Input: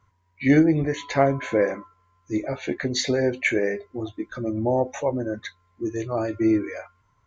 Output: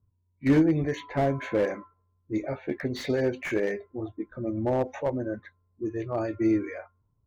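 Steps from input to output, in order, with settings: low-pass opened by the level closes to 310 Hz, open at -18.5 dBFS; slew limiter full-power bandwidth 87 Hz; gain -3.5 dB

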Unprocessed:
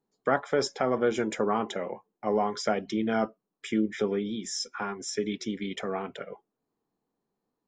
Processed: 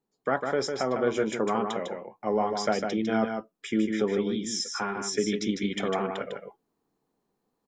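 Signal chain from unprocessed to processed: vocal rider within 4 dB 2 s; on a send: echo 0.152 s -5.5 dB

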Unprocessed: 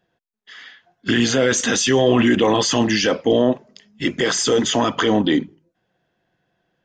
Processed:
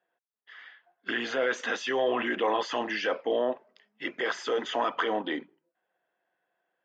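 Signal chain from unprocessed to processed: BPF 560–2200 Hz; gain -5.5 dB

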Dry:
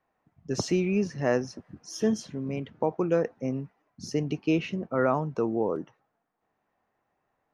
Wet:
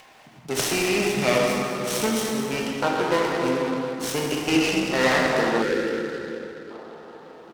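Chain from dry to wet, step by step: minimum comb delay 0.32 ms; tilt shelf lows -8.5 dB, about 730 Hz; in parallel at +0.5 dB: compressor, threshold -34 dBFS, peak gain reduction 13 dB; on the sum: high shelf 9100 Hz -5.5 dB; on a send: feedback echo 0.212 s, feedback 58%, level -14 dB; on the sum: plate-style reverb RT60 3.6 s, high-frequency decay 0.45×, DRR -4 dB; spectral gain 5.63–6.71, 570–1300 Hz -15 dB; HPF 120 Hz; upward compressor, threshold -36 dBFS; noise-modulated delay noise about 2300 Hz, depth 0.032 ms

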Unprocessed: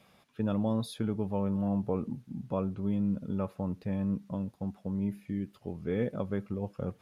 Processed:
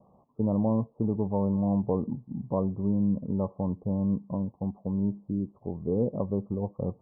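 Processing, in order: steep low-pass 1100 Hz 96 dB/oct; gain +4 dB

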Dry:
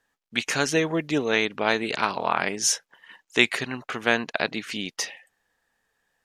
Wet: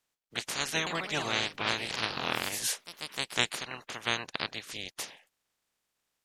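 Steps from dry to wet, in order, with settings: spectral limiter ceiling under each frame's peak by 23 dB; 0.78–3.62 echoes that change speed 85 ms, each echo +2 st, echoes 3, each echo -6 dB; gain -8.5 dB

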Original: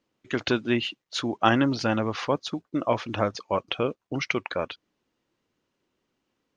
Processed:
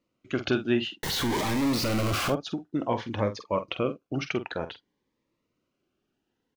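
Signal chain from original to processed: 1.03–2.3 infinite clipping; high shelf 4200 Hz -7.5 dB; doubler 47 ms -11 dB; on a send at -24 dB: reverb RT60 0.20 s, pre-delay 10 ms; on the sum: cascading phaser rising 0.55 Hz

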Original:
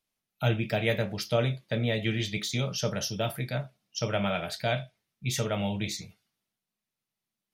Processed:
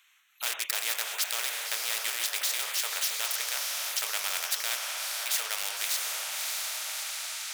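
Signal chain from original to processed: Wiener smoothing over 9 samples; inverse Chebyshev high-pass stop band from 280 Hz, stop band 70 dB; high shelf 2400 Hz +9.5 dB; on a send: diffused feedback echo 0.618 s, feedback 44%, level -11 dB; on the sum: spectral compressor 4:1

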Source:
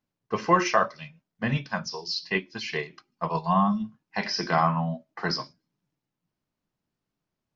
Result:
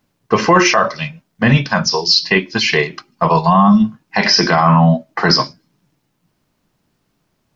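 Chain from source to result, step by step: maximiser +19.5 dB; gain -1 dB

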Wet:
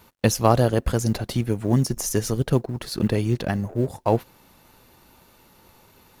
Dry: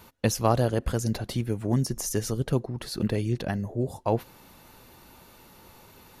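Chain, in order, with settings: G.711 law mismatch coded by A; gain +5.5 dB

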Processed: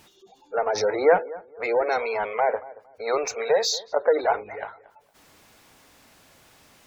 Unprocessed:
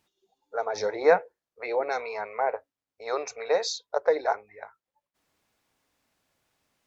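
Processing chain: power-law curve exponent 0.7; darkening echo 0.229 s, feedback 25%, low-pass 1900 Hz, level -19 dB; spectral gate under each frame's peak -30 dB strong

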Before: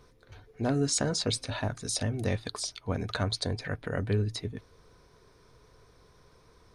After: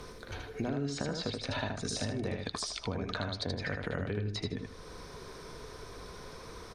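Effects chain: treble ducked by the level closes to 2800 Hz, closed at -25.5 dBFS; bell 120 Hz -9.5 dB 0.26 oct; in parallel at +0.5 dB: limiter -24 dBFS, peak gain reduction 7.5 dB; on the sum: compressor, threshold -33 dBFS, peak gain reduction 13.5 dB; on a send: feedback echo 78 ms, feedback 22%, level -4 dB; on the sum: three-band squash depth 40%

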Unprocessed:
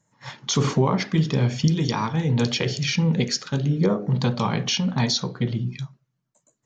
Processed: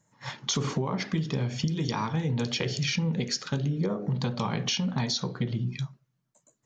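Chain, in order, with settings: compressor, threshold -25 dBFS, peak gain reduction 11 dB

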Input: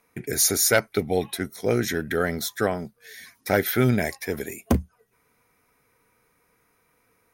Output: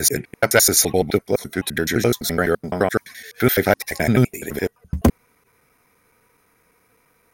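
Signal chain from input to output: slices in reverse order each 85 ms, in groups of 5; gain +5.5 dB

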